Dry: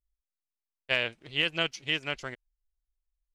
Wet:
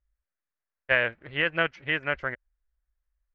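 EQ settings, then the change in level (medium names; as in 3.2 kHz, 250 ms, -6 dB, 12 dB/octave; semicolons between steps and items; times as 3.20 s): resonant low-pass 1.7 kHz, resonance Q 2.8; peaking EQ 64 Hz +12 dB 0.85 oct; peaking EQ 550 Hz +6 dB 0.33 oct; +1.5 dB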